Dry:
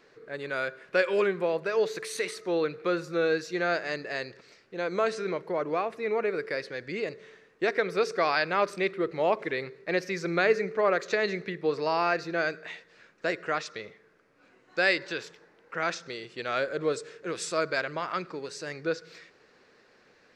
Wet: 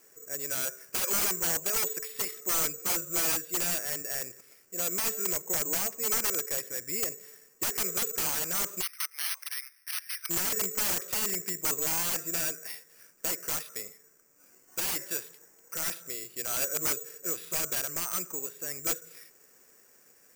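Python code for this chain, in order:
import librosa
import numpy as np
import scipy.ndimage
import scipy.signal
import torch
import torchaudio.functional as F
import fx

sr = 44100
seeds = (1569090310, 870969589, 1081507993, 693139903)

y = (np.mod(10.0 ** (23.0 / 20.0) * x + 1.0, 2.0) - 1.0) / 10.0 ** (23.0 / 20.0)
y = fx.highpass(y, sr, hz=1300.0, slope=24, at=(8.81, 10.29), fade=0.02)
y = (np.kron(scipy.signal.resample_poly(y, 1, 6), np.eye(6)[0]) * 6)[:len(y)]
y = y * librosa.db_to_amplitude(-6.5)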